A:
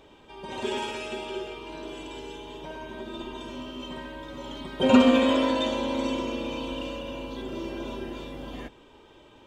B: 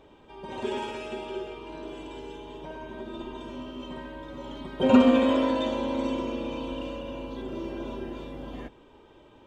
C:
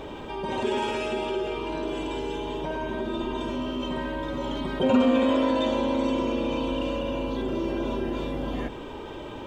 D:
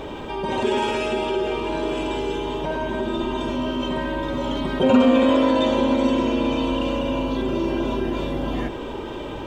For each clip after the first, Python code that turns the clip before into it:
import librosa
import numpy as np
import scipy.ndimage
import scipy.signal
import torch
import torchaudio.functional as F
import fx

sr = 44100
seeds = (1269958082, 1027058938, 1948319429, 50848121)

y1 = fx.high_shelf(x, sr, hz=2200.0, db=-8.5)
y2 = fx.env_flatten(y1, sr, amount_pct=50)
y2 = y2 * 10.0 ** (-4.0 / 20.0)
y3 = y2 + 10.0 ** (-12.5 / 20.0) * np.pad(y2, (int(971 * sr / 1000.0), 0))[:len(y2)]
y3 = y3 * 10.0 ** (5.0 / 20.0)